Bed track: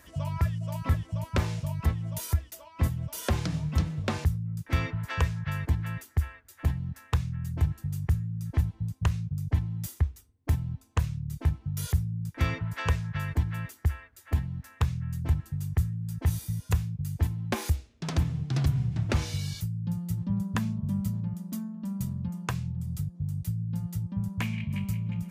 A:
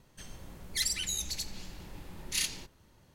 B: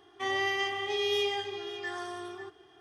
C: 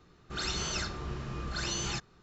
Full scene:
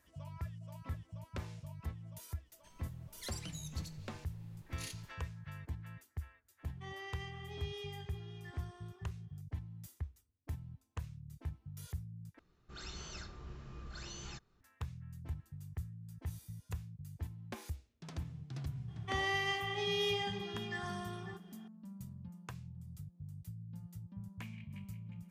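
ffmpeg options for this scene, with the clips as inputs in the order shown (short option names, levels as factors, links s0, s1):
-filter_complex "[2:a]asplit=2[s0][s1];[0:a]volume=0.158[s2];[s0]aresample=22050,aresample=44100[s3];[3:a]lowshelf=f=100:g=7.5[s4];[s1]equalizer=f=370:w=7.6:g=-5.5[s5];[s2]asplit=2[s6][s7];[s6]atrim=end=12.394[s8];[s4]atrim=end=2.22,asetpts=PTS-STARTPTS,volume=0.188[s9];[s7]atrim=start=14.606[s10];[1:a]atrim=end=3.14,asetpts=PTS-STARTPTS,volume=0.158,afade=t=in:d=0.004:c=hsin,afade=t=out:st=3.136:d=0.004:c=hsin,adelay=2460[s11];[s3]atrim=end=2.8,asetpts=PTS-STARTPTS,volume=0.133,afade=t=in:d=0.004:c=hsin,afade=t=out:st=2.796:d=0.004:c=hsin,adelay=6610[s12];[s5]atrim=end=2.8,asetpts=PTS-STARTPTS,volume=0.596,afade=t=in:d=0.004:c=hsin,afade=t=out:st=2.796:d=0.004:c=hsin,adelay=18880[s13];[s8][s9]acrossfade=d=0.004:c1=hsin:c2=hsin[s14];[s14][s10]acrossfade=d=0.004:c1=hsin:c2=hsin[s15];[s15][s11][s12][s13]amix=inputs=4:normalize=0"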